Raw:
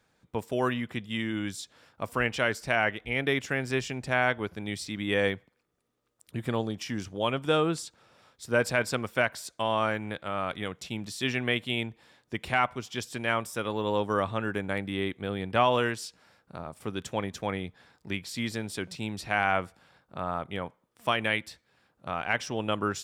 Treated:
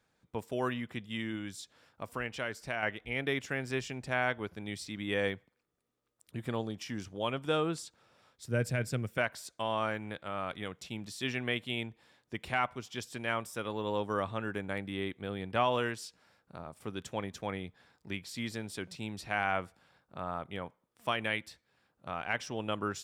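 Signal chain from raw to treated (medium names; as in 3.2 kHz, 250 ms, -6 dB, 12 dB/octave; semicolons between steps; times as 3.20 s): 1.35–2.83 s: compression 1.5:1, threshold -34 dBFS, peak gain reduction 5 dB; 8.48–9.18 s: graphic EQ 125/1000/4000 Hz +10/-11/-6 dB; trim -5.5 dB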